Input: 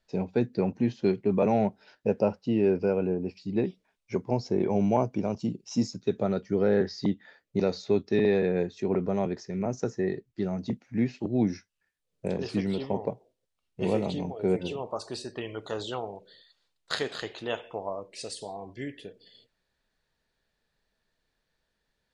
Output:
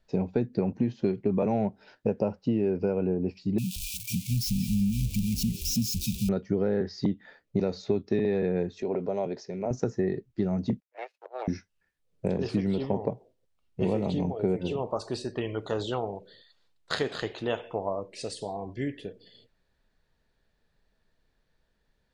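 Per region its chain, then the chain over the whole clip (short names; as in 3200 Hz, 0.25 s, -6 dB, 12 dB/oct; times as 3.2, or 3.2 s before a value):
3.58–6.29 switching spikes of -22 dBFS + brick-wall FIR band-stop 240–2300 Hz + frequency-shifting echo 0.178 s, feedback 45%, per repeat -150 Hz, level -14.5 dB
8.82–9.71 compressor 1.5:1, threshold -31 dBFS + speaker cabinet 200–7000 Hz, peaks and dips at 200 Hz -8 dB, 320 Hz -7 dB, 590 Hz +3 dB, 1200 Hz -7 dB, 1800 Hz -5 dB, 4300 Hz +3 dB
10.8–11.48 power-law curve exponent 2 + steep high-pass 480 Hz 48 dB/oct
whole clip: tilt -1.5 dB/oct; compressor, threshold -25 dBFS; gain +2.5 dB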